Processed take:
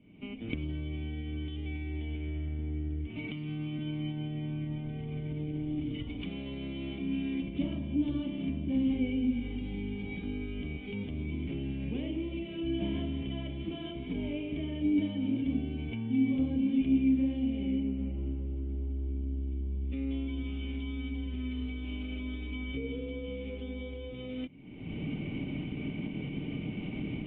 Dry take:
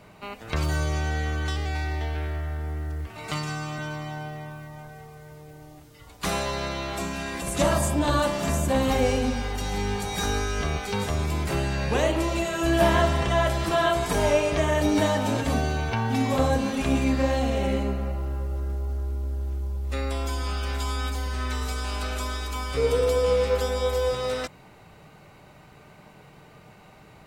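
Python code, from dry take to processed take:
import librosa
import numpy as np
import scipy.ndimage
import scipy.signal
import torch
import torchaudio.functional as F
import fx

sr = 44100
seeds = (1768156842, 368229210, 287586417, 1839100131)

y = fx.recorder_agc(x, sr, target_db=-16.5, rise_db_per_s=48.0, max_gain_db=30)
y = fx.formant_cascade(y, sr, vowel='i')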